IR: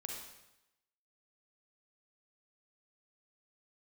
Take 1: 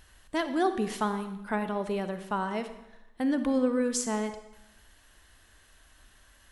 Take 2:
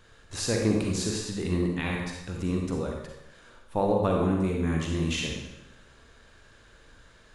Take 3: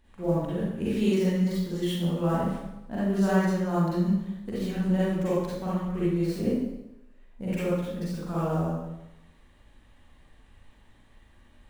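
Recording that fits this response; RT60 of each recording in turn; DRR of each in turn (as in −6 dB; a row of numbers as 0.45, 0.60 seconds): 2; 0.90, 0.90, 0.90 seconds; 9.5, −0.5, −10.0 decibels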